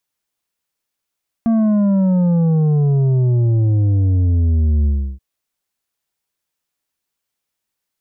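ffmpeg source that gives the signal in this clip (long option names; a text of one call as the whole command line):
ffmpeg -f lavfi -i "aevalsrc='0.237*clip((3.73-t)/0.33,0,1)*tanh(2.24*sin(2*PI*230*3.73/log(65/230)*(exp(log(65/230)*t/3.73)-1)))/tanh(2.24)':duration=3.73:sample_rate=44100" out.wav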